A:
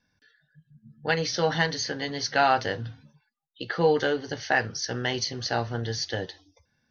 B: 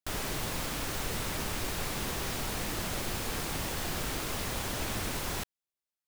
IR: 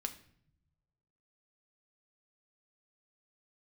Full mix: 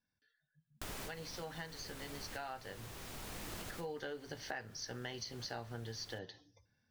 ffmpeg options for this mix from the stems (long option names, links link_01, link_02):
-filter_complex "[0:a]volume=-9.5dB,afade=type=in:start_time=3.78:duration=0.27:silence=0.375837,asplit=3[link_01][link_02][link_03];[link_02]volume=-10.5dB[link_04];[1:a]adelay=750,volume=-4.5dB[link_05];[link_03]apad=whole_len=301023[link_06];[link_05][link_06]sidechaincompress=threshold=-50dB:ratio=6:attack=16:release=1080[link_07];[2:a]atrim=start_sample=2205[link_08];[link_04][link_08]afir=irnorm=-1:irlink=0[link_09];[link_01][link_07][link_09]amix=inputs=3:normalize=0,acompressor=threshold=-42dB:ratio=4"